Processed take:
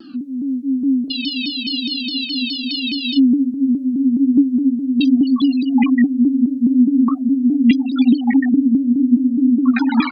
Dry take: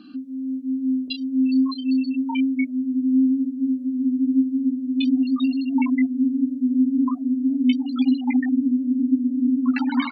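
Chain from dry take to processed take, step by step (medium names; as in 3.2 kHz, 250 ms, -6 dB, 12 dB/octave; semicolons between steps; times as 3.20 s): spectral freeze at 1.13 s, 2.05 s; vibrato with a chosen wave saw down 4.8 Hz, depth 160 cents; trim +6 dB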